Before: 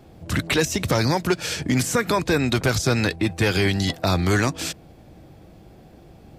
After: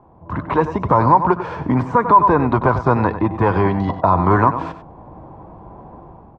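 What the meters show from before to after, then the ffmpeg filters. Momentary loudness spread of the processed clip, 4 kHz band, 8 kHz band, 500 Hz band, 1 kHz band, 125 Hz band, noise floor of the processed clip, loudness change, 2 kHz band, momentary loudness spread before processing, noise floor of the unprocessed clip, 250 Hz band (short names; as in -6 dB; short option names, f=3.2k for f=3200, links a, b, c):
9 LU, under -15 dB, under -30 dB, +5.0 dB, +14.5 dB, +3.0 dB, -45 dBFS, +5.5 dB, -2.0 dB, 5 LU, -48 dBFS, +4.0 dB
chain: -filter_complex "[0:a]dynaudnorm=f=180:g=5:m=10.5dB,lowpass=f=1k:t=q:w=9.9,asplit=2[a][b];[b]aecho=0:1:96:0.251[c];[a][c]amix=inputs=2:normalize=0,alimiter=level_in=-3.5dB:limit=-1dB:release=50:level=0:latency=1,volume=-1dB"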